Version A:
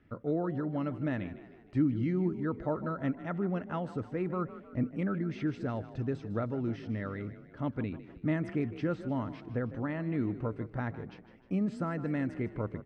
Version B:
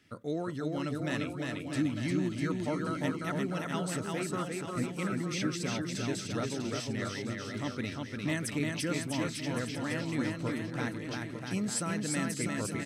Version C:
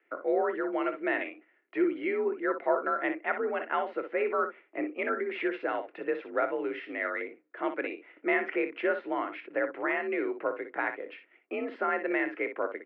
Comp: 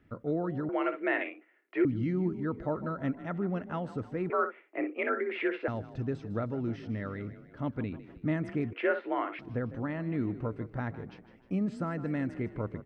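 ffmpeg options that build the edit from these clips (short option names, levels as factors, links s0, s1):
-filter_complex "[2:a]asplit=3[s0][s1][s2];[0:a]asplit=4[s3][s4][s5][s6];[s3]atrim=end=0.692[s7];[s0]atrim=start=0.688:end=1.852[s8];[s4]atrim=start=1.848:end=4.302[s9];[s1]atrim=start=4.298:end=5.682[s10];[s5]atrim=start=5.678:end=8.732[s11];[s2]atrim=start=8.728:end=9.392[s12];[s6]atrim=start=9.388[s13];[s7][s8]acrossfade=d=0.004:c1=hsin:c2=hsin[s14];[s14][s9]acrossfade=d=0.004:c1=hsin:c2=hsin[s15];[s15][s10]acrossfade=d=0.004:c1=hsin:c2=hsin[s16];[s16][s11]acrossfade=d=0.004:c1=hsin:c2=hsin[s17];[s17][s12]acrossfade=d=0.004:c1=hsin:c2=hsin[s18];[s18][s13]acrossfade=d=0.004:c1=hsin:c2=hsin"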